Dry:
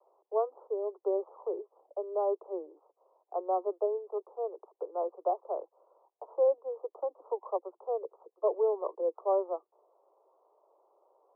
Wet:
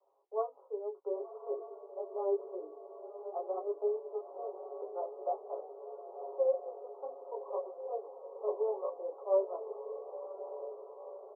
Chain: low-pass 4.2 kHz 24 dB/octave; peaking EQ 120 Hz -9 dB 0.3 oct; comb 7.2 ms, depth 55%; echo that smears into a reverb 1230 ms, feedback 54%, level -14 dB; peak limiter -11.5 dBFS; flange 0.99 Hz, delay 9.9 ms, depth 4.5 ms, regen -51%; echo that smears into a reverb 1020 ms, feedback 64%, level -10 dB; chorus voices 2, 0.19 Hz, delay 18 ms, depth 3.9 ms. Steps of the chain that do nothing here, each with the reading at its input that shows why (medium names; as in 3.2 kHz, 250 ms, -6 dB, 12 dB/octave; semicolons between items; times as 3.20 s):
low-pass 4.2 kHz: input has nothing above 1.1 kHz; peaking EQ 120 Hz: input has nothing below 320 Hz; peak limiter -11.5 dBFS: peak at its input -16.0 dBFS